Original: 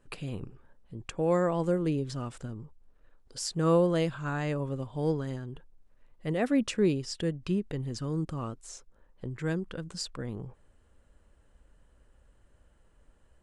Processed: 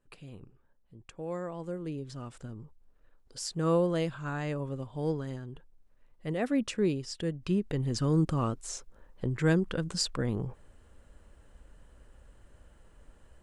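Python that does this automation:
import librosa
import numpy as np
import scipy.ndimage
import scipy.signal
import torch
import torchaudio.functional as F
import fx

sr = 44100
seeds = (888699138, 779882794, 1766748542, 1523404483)

y = fx.gain(x, sr, db=fx.line((1.61, -10.5), (2.61, -2.5), (7.23, -2.5), (8.05, 6.0)))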